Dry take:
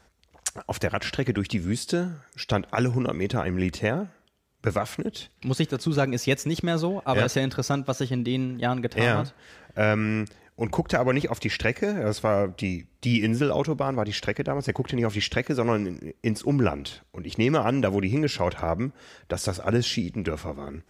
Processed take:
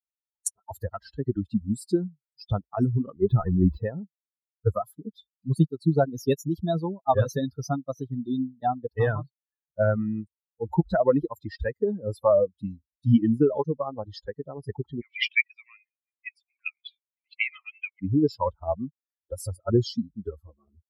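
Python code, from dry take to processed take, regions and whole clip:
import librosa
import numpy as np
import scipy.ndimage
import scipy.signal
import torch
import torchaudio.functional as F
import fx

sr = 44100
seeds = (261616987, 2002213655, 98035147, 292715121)

y = fx.chain(x, sr, fx.lowpass(hz=3000.0, slope=12),
    fx.power_curve(exponent=0.7), at=(3.22, 3.84))
y = fx.chain(y, sr, fx.highpass_res(hz=2300.0, q=11.0),
    fx.air_absorb(metres=86.0), at=(15.01, 18.02))
y = fx.bin_expand(y, sr, power=3.0)
y = scipy.signal.sosfilt(scipy.signal.butter(2, 11000.0, 'lowpass', fs=sr, output='sos'), y)
y = fx.band_shelf(y, sr, hz=3200.0, db=-11.5, octaves=2.7)
y = F.gain(torch.from_numpy(y), 9.0).numpy()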